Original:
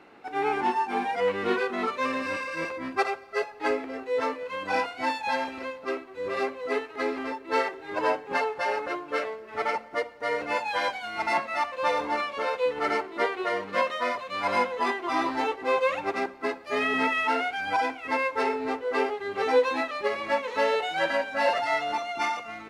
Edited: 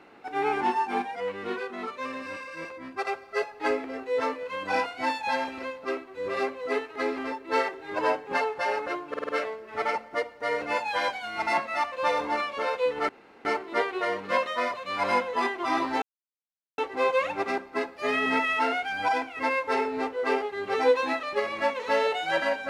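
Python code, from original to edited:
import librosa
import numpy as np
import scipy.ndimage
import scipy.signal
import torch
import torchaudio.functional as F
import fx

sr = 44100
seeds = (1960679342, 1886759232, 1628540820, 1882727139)

y = fx.edit(x, sr, fx.clip_gain(start_s=1.02, length_s=2.05, db=-6.5),
    fx.stutter(start_s=9.09, slice_s=0.05, count=5),
    fx.insert_room_tone(at_s=12.89, length_s=0.36),
    fx.insert_silence(at_s=15.46, length_s=0.76), tone=tone)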